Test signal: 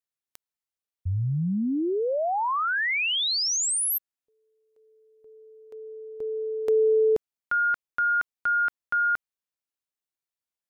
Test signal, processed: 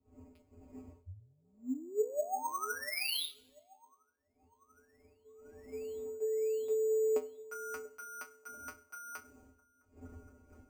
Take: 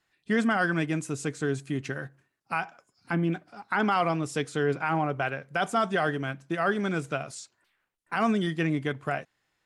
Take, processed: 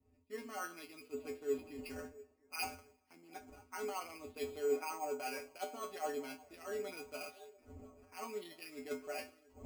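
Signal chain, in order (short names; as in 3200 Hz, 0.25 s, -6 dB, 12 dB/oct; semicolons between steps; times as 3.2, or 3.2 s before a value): wind noise 200 Hz -43 dBFS; thirty-one-band EQ 400 Hz -3 dB, 1600 Hz -11 dB, 2500 Hz +8 dB; limiter -20 dBFS; reverse; compressor 8:1, threshold -36 dBFS; reverse; resonant low shelf 220 Hz -13 dB, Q 1.5; resonator 85 Hz, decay 0.2 s, harmonics odd, mix 100%; on a send: delay with a stepping band-pass 0.69 s, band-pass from 480 Hz, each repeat 0.7 oct, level -11.5 dB; on the sum: Schroeder reverb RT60 1.1 s, combs from 31 ms, DRR 16.5 dB; careless resampling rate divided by 6×, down filtered, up hold; three-band expander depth 70%; gain +6.5 dB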